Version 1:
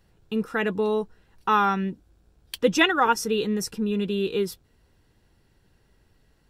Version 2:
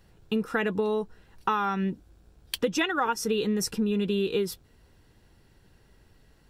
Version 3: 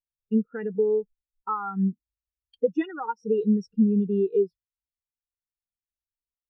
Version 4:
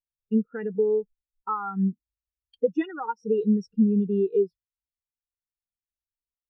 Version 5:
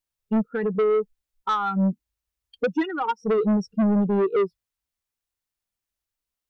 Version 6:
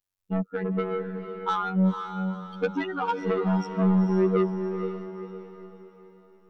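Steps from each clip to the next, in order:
downward compressor 10 to 1, threshold −26 dBFS, peak gain reduction 12.5 dB; level +3.5 dB
high-shelf EQ 9,100 Hz −8 dB; every bin expanded away from the loudest bin 2.5 to 1
no processing that can be heard
soft clipping −25.5 dBFS, distortion −9 dB; level +8 dB
phases set to zero 94.1 Hz; feedback delay with all-pass diffusion 482 ms, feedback 43%, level −7 dB

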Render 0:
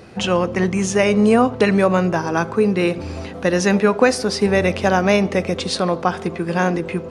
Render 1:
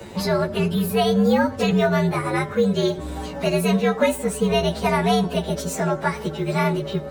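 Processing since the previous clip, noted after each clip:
partials spread apart or drawn together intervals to 118%
multiband upward and downward compressor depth 40%
level −1.5 dB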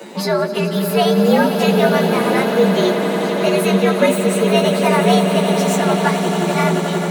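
Butterworth high-pass 180 Hz
on a send: echo that builds up and dies away 88 ms, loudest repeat 8, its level −13 dB
on the sum: level +4 dB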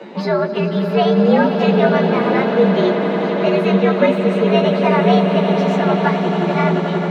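high-frequency loss of the air 250 metres
level +1 dB

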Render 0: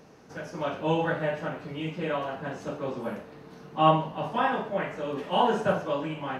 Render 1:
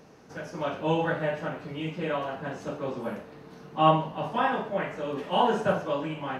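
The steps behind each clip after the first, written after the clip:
no processing that can be heard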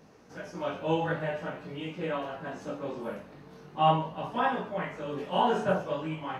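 multi-voice chorus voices 2, 0.45 Hz, delay 19 ms, depth 2.7 ms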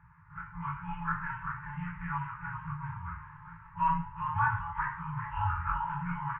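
single-sideband voice off tune −140 Hz 220–2,000 Hz
echo with shifted repeats 397 ms, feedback 35%, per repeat +100 Hz, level −9.5 dB
brick-wall band-stop 180–850 Hz
level +4 dB

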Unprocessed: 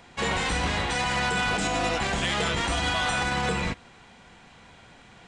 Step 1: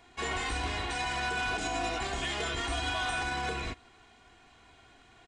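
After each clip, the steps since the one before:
comb filter 2.8 ms, depth 68%
level −8.5 dB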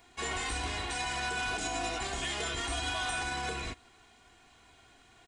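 high-shelf EQ 7,000 Hz +11.5 dB
level −2.5 dB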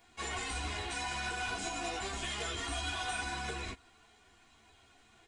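string-ensemble chorus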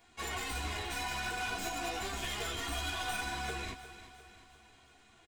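stylus tracing distortion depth 0.044 ms
repeating echo 352 ms, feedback 51%, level −14 dB

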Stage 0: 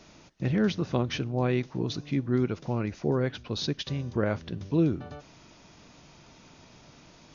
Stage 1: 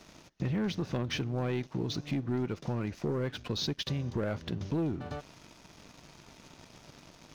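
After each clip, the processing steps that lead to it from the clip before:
leveller curve on the samples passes 2
downward compressor 3 to 1, threshold −31 dBFS, peak gain reduction 11 dB
level −1.5 dB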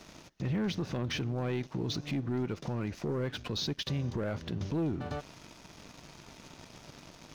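brickwall limiter −28.5 dBFS, peak gain reduction 6.5 dB
level +2.5 dB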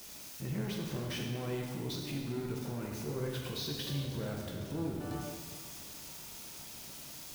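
spike at every zero crossing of −34 dBFS
dense smooth reverb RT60 1.9 s, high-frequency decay 0.85×, DRR −1.5 dB
level −7.5 dB

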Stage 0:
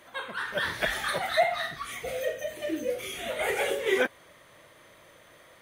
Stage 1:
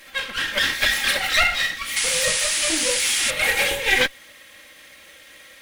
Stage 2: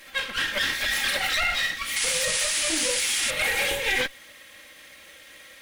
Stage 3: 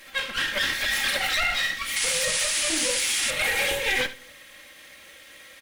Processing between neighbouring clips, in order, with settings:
lower of the sound and its delayed copy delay 3.7 ms; sound drawn into the spectrogram noise, 0:01.96–0:03.31, 770–11,000 Hz −35 dBFS; high shelf with overshoot 1,500 Hz +8 dB, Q 1.5; level +4 dB
brickwall limiter −13.5 dBFS, peak gain reduction 8.5 dB; level −1.5 dB
single-tap delay 72 ms −14.5 dB; on a send at −20 dB: convolution reverb RT60 0.85 s, pre-delay 5 ms

